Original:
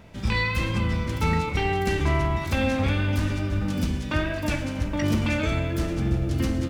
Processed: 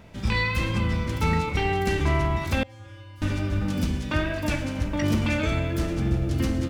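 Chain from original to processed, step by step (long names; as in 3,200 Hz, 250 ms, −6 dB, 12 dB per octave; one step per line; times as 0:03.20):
0:02.63–0:03.22: tuned comb filter 110 Hz, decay 0.85 s, harmonics odd, mix 100%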